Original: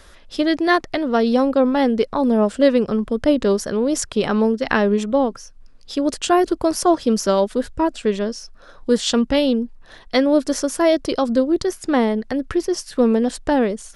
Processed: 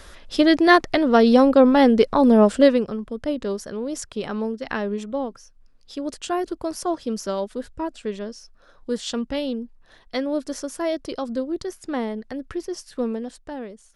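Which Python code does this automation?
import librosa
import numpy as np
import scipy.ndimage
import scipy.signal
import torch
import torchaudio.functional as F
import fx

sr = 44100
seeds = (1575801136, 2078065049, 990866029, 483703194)

y = fx.gain(x, sr, db=fx.line((2.57, 2.5), (2.97, -9.0), (13.02, -9.0), (13.45, -16.0)))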